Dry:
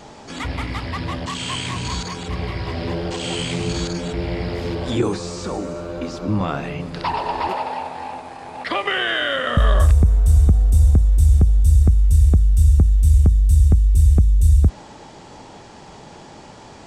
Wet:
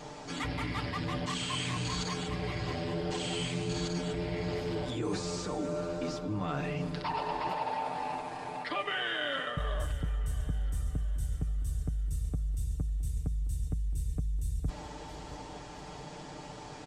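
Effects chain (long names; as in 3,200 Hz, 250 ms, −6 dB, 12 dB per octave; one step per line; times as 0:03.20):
comb filter 6.7 ms, depth 65%
reversed playback
downward compressor 6 to 1, threshold −25 dBFS, peak gain reduction 14 dB
reversed playback
repeating echo 667 ms, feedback 46%, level −17 dB
level −5.5 dB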